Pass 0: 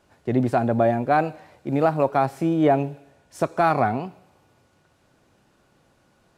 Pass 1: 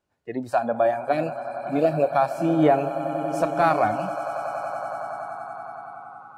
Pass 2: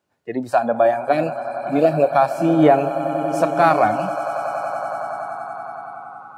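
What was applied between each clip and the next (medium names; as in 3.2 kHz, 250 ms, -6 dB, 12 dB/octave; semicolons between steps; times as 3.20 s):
time-frequency box 1.12–2.15 s, 730–1700 Hz -18 dB; echo with a slow build-up 93 ms, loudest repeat 8, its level -15.5 dB; spectral noise reduction 18 dB
high-pass 110 Hz; trim +5 dB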